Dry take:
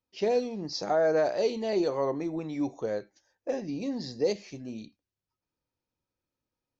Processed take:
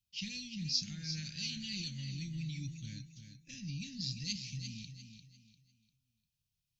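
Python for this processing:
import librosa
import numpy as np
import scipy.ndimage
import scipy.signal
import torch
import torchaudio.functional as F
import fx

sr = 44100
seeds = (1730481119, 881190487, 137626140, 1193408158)

p1 = scipy.signal.sosfilt(scipy.signal.ellip(3, 1.0, 50, [160.0, 2800.0], 'bandstop', fs=sr, output='sos'), x)
p2 = p1 + fx.echo_feedback(p1, sr, ms=348, feedback_pct=32, wet_db=-8.5, dry=0)
y = p2 * librosa.db_to_amplitude(4.0)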